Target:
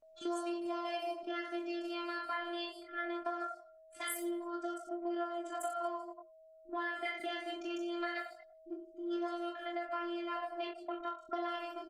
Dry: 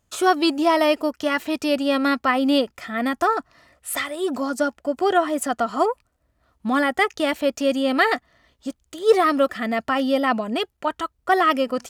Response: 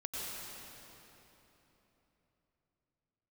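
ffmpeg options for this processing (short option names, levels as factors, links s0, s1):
-filter_complex "[0:a]equalizer=f=7100:w=0.71:g=2.5,afftfilt=real='hypot(re,im)*cos(PI*b)':imag='0':win_size=512:overlap=0.75,bandreject=f=57.7:t=h:w=4,bandreject=f=115.4:t=h:w=4,bandreject=f=173.1:t=h:w=4,bandreject=f=230.8:t=h:w=4,asplit=2[s0][s1];[s1]aecho=0:1:40|90|152.5|230.6|328.3:0.631|0.398|0.251|0.158|0.1[s2];[s0][s2]amix=inputs=2:normalize=0,anlmdn=158,flanger=delay=20:depth=4.5:speed=0.21,acompressor=threshold=0.0141:ratio=4,lowshelf=f=150:g=-5.5,aeval=exprs='val(0)+0.00141*sin(2*PI*640*n/s)':c=same,acrossover=split=240|5800[s3][s4][s5];[s4]adelay=40[s6];[s5]adelay=190[s7];[s3][s6][s7]amix=inputs=3:normalize=0" -ar 48000 -c:a libopus -b:a 32k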